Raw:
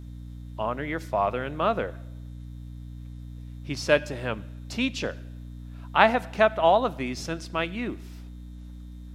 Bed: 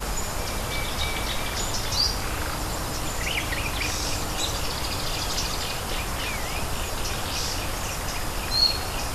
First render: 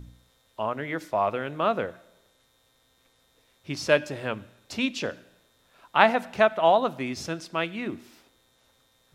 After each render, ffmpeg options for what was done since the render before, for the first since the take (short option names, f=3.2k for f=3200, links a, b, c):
-af "bandreject=f=60:t=h:w=4,bandreject=f=120:t=h:w=4,bandreject=f=180:t=h:w=4,bandreject=f=240:t=h:w=4,bandreject=f=300:t=h:w=4"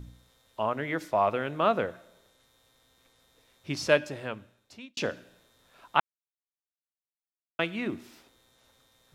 -filter_complex "[0:a]asplit=4[a][b][c][d];[a]atrim=end=4.97,asetpts=PTS-STARTPTS,afade=t=out:st=3.72:d=1.25[e];[b]atrim=start=4.97:end=6,asetpts=PTS-STARTPTS,afade=t=in:d=0.004:c=hsin,afade=t=out:st=1.026:d=0.004:c=hsin[f];[c]atrim=start=6:end=7.59,asetpts=PTS-STARTPTS,volume=0[g];[d]atrim=start=7.59,asetpts=PTS-STARTPTS,afade=t=in:d=0.004:c=hsin[h];[e][f][g][h]concat=n=4:v=0:a=1"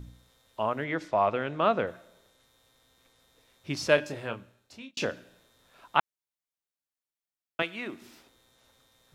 -filter_complex "[0:a]asettb=1/sr,asplit=3[a][b][c];[a]atrim=end=0.844[d];[b]atrim=start=0.84:end=1.87,asetpts=PTS-STARTPTS,afade=t=in:d=0.004:c=qsin,afade=t=out:st=1.026:d=0.004:c=qsin,lowpass=6.1k[e];[c]atrim=start=1.866[f];[d][e]acrossfade=d=0.004:c1=hsin:c2=qsin[g];[g][f]acrossfade=d=0.004:c1=qsin:c2=hsin,asettb=1/sr,asplit=3[h][i][j];[h]atrim=end=3.954[k];[i]atrim=start=3.95:end=5.05,asetpts=PTS-STARTPTS,afade=t=in:d=0.004:c=qsin,afade=t=out:st=1.096:d=0.004:c=qsin,asplit=2[l][m];[m]adelay=26,volume=-7dB[n];[l][n]amix=inputs=2:normalize=0,atrim=end_sample=48510[o];[j]atrim=start=5.046[p];[k][o]acrossfade=d=0.004:c1=hsin:c2=qsin[q];[q][p]acrossfade=d=0.004:c1=qsin:c2=hsin,asettb=1/sr,asplit=3[r][s][t];[r]atrim=end=7.624[u];[s]atrim=start=7.62:end=8.02,asetpts=PTS-STARTPTS,afade=t=in:d=0.004:c=qsin,afade=t=out:st=0.396:d=0.004:c=qsin,highpass=f=570:p=1[v];[t]atrim=start=8.016[w];[u][v]acrossfade=d=0.004:c1=hsin:c2=qsin[x];[x][w]acrossfade=d=0.004:c1=qsin:c2=hsin"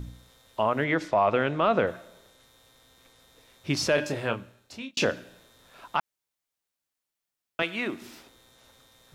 -af "acontrast=64,alimiter=limit=-13dB:level=0:latency=1:release=50"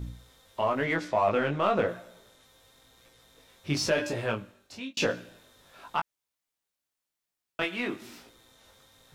-filter_complex "[0:a]asplit=2[a][b];[b]asoftclip=type=hard:threshold=-30dB,volume=-10dB[c];[a][c]amix=inputs=2:normalize=0,flanger=delay=17:depth=3.9:speed=0.97"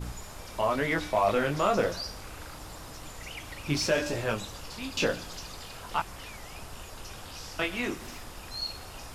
-filter_complex "[1:a]volume=-14.5dB[a];[0:a][a]amix=inputs=2:normalize=0"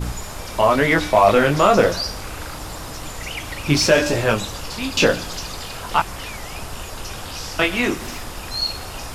-af "volume=11.5dB,alimiter=limit=-2dB:level=0:latency=1"